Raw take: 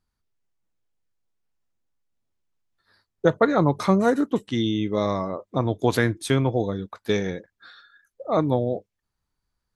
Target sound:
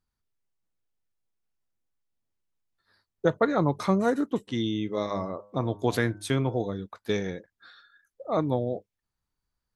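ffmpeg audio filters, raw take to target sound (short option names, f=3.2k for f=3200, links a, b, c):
-filter_complex "[0:a]asplit=3[a][b][c];[a]afade=t=out:st=4.47:d=0.02[d];[b]bandreject=f=102.3:t=h:w=4,bandreject=f=204.6:t=h:w=4,bandreject=f=306.9:t=h:w=4,bandreject=f=409.2:t=h:w=4,bandreject=f=511.5:t=h:w=4,bandreject=f=613.8:t=h:w=4,bandreject=f=716.1:t=h:w=4,bandreject=f=818.4:t=h:w=4,bandreject=f=920.7:t=h:w=4,bandreject=f=1.023k:t=h:w=4,bandreject=f=1.1253k:t=h:w=4,bandreject=f=1.2276k:t=h:w=4,bandreject=f=1.3299k:t=h:w=4,bandreject=f=1.4322k:t=h:w=4,bandreject=f=1.5345k:t=h:w=4,afade=t=in:st=4.47:d=0.02,afade=t=out:st=6.69:d=0.02[e];[c]afade=t=in:st=6.69:d=0.02[f];[d][e][f]amix=inputs=3:normalize=0,volume=-4.5dB"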